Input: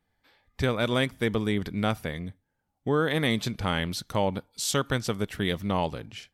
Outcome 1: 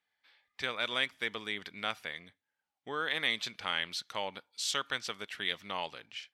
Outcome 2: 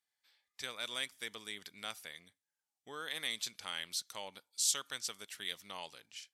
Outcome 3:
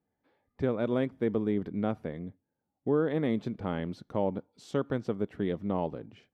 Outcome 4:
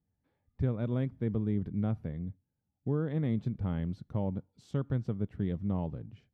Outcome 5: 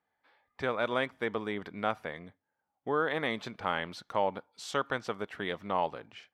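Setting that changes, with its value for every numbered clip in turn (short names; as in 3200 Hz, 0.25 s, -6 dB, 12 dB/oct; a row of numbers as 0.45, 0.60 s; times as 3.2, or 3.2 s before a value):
band-pass, frequency: 2800, 7600, 330, 120, 990 Hz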